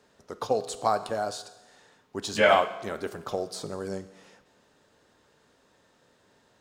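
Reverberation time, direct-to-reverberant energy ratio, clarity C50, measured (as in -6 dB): 1.1 s, 11.0 dB, 13.5 dB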